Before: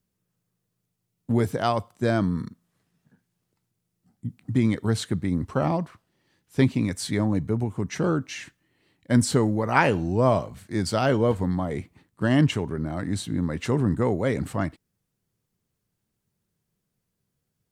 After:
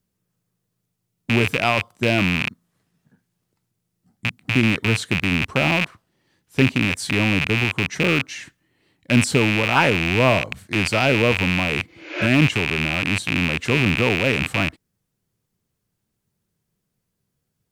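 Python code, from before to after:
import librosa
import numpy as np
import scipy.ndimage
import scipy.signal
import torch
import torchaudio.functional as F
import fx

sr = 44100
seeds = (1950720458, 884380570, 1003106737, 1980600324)

y = fx.rattle_buzz(x, sr, strikes_db=-35.0, level_db=-11.0)
y = fx.spec_repair(y, sr, seeds[0], start_s=11.91, length_s=0.31, low_hz=280.0, high_hz=7100.0, source='both')
y = y * librosa.db_to_amplitude(2.5)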